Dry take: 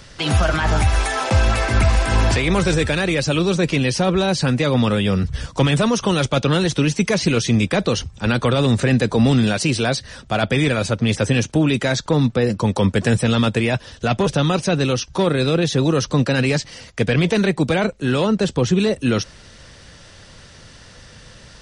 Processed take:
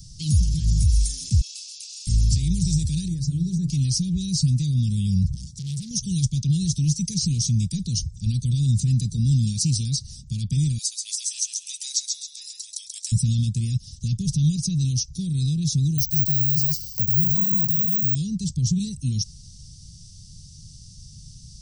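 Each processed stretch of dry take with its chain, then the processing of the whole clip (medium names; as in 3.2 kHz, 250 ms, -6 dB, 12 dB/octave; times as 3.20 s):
1.41–2.07 s: steep high-pass 2.4 kHz 96 dB/octave + distance through air 66 m + doubling 29 ms -6.5 dB
3.08–3.70 s: resonant high shelf 1.9 kHz -9 dB, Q 3 + hum notches 50/100/150/200/250/300/350/400/450/500 Hz
5.34–5.91 s: high-pass 67 Hz + transformer saturation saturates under 2.1 kHz
10.78–13.12 s: inverse Chebyshev high-pass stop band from 470 Hz, stop band 60 dB + treble shelf 4.9 kHz +6 dB + feedback delay 134 ms, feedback 38%, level -4.5 dB
15.98–18.15 s: delay 144 ms -4.5 dB + careless resampling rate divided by 2×, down filtered, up zero stuff
whole clip: peak limiter -11 dBFS; Chebyshev band-stop 160–5300 Hz, order 3; trim +2.5 dB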